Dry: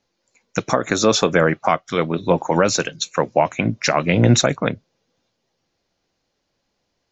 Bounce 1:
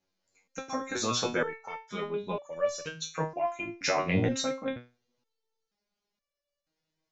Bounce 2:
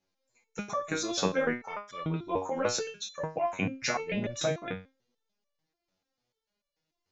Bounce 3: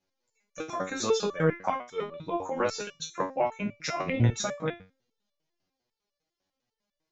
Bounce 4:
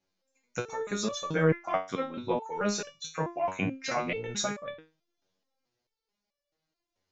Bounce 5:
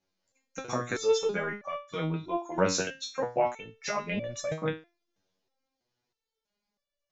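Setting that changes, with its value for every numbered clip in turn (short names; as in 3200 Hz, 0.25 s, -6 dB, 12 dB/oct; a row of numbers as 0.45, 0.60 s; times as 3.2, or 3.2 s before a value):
stepped resonator, rate: 2.1, 6.8, 10, 4.6, 3.1 Hz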